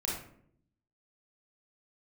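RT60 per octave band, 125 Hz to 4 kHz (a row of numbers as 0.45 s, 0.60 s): 1.1 s, 0.95 s, 0.75 s, 0.55 s, 0.50 s, 0.35 s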